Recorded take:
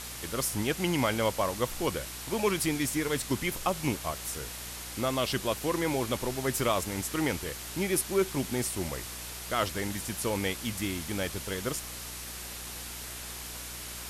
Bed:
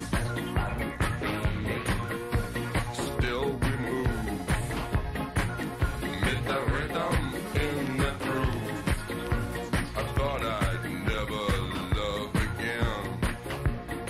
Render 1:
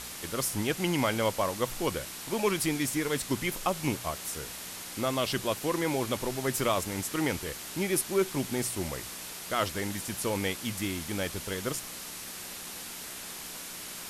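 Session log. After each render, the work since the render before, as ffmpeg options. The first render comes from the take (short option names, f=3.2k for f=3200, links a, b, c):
-af "bandreject=f=60:t=h:w=4,bandreject=f=120:t=h:w=4"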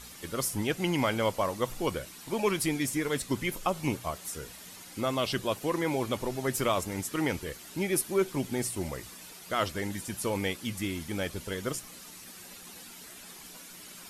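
-af "afftdn=nr=10:nf=-42"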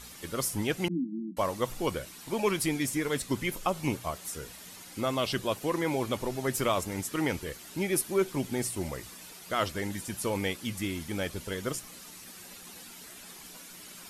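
-filter_complex "[0:a]asettb=1/sr,asplit=3[a][b][c];[a]atrim=end=0.884[d];[b]atrim=start=0.88:end=1.37,asetpts=PTS-STARTPTS,afade=t=in:d=0.004:c=qsin,afade=t=out:st=0.486:d=0.004:c=qsin,asuperpass=centerf=240:order=20:qfactor=1.4[e];[c]atrim=start=1.366[f];[d][e]acrossfade=d=0.004:c1=hsin:c2=qsin[g];[g][f]acrossfade=d=0.004:c1=qsin:c2=hsin"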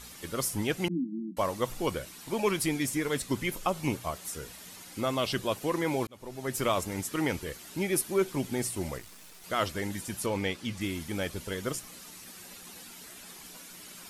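-filter_complex "[0:a]asettb=1/sr,asplit=3[a][b][c];[a]atrim=end=8.984[d];[b]atrim=start=8.98:end=9.44,asetpts=PTS-STARTPTS,afade=t=in:d=0.004:c=qsin,afade=t=out:st=0.456:d=0.004:c=qsin,aeval=exprs='max(val(0),0)':c=same[e];[c]atrim=start=9.436[f];[d][e]acrossfade=d=0.004:c1=hsin:c2=qsin[g];[g][f]acrossfade=d=0.004:c1=qsin:c2=hsin,asettb=1/sr,asplit=3[h][i][j];[h]atrim=end=10.264[k];[i]atrim=start=10.26:end=10.81,asetpts=PTS-STARTPTS,afade=t=in:d=0.004:c=qsin,afade=t=out:st=0.546:d=0.004:c=qsin,acrossover=split=6700[l][m];[m]acompressor=threshold=-58dB:ratio=4:attack=1:release=60[n];[l][n]amix=inputs=2:normalize=0[o];[j]atrim=start=10.806[p];[k][o]acrossfade=d=0.004:c1=hsin:c2=qsin[q];[q][p]acrossfade=d=0.004:c1=qsin:c2=hsin,asplit=2[r][s];[r]atrim=end=6.07,asetpts=PTS-STARTPTS,afade=t=out:st=6.066:d=0.004:c=hsin[t];[s]atrim=start=6.07,asetpts=PTS-STARTPTS,afade=t=in:d=0.61[u];[t][u]concat=n=2:v=0:a=1"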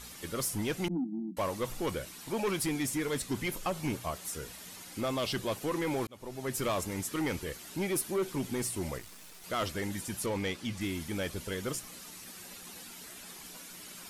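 -af "asoftclip=type=tanh:threshold=-25.5dB"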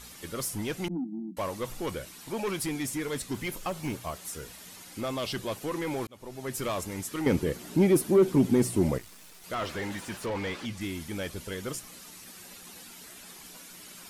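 -filter_complex "[0:a]asettb=1/sr,asplit=3[a][b][c];[a]atrim=end=3.344[d];[b]atrim=start=3.34:end=4.57,asetpts=PTS-STARTPTS,afade=t=in:d=0.004:c=qsin,afade=t=out:st=1.226:d=0.004:c=qsin,acrusher=bits=7:mode=log:mix=0:aa=0.000001[e];[c]atrim=start=4.566[f];[d][e]acrossfade=d=0.004:c1=hsin:c2=qsin[g];[g][f]acrossfade=d=0.004:c1=qsin:c2=hsin,asettb=1/sr,asplit=3[h][i][j];[h]atrim=end=7.264[k];[i]atrim=start=7.26:end=8.98,asetpts=PTS-STARTPTS,afade=t=in:d=0.004:c=qsin,afade=t=out:st=1.716:d=0.004:c=qsin,equalizer=f=230:w=0.35:g=13[l];[j]atrim=start=8.976[m];[k][l]acrossfade=d=0.004:c1=hsin:c2=qsin[n];[n][m]acrossfade=d=0.004:c1=qsin:c2=hsin,asettb=1/sr,asplit=3[o][p][q];[o]atrim=end=9.544[r];[p]atrim=start=9.54:end=10.66,asetpts=PTS-STARTPTS,afade=t=in:d=0.004:c=qsin,afade=t=out:st=1.116:d=0.004:c=qsin,asplit=2[s][t];[t]highpass=f=720:p=1,volume=21dB,asoftclip=type=tanh:threshold=-25.5dB[u];[s][u]amix=inputs=2:normalize=0,lowpass=f=1.7k:p=1,volume=-6dB[v];[q]atrim=start=10.656[w];[r][v]acrossfade=d=0.004:c1=hsin:c2=qsin[x];[x][w]acrossfade=d=0.004:c1=qsin:c2=hsin"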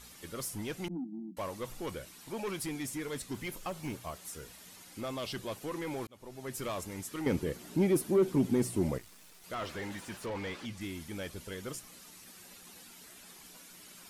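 -af "volume=-5.5dB"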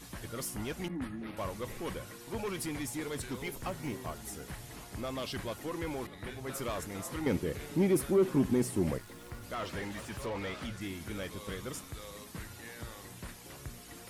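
-filter_complex "[1:a]volume=-17dB[a];[0:a][a]amix=inputs=2:normalize=0"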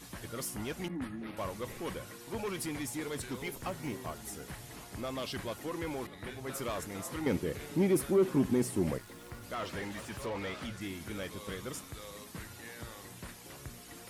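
-af "lowshelf=f=61:g=-7"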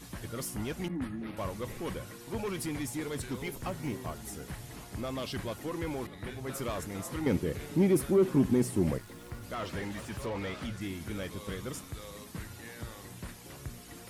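-af "lowshelf=f=250:g=6"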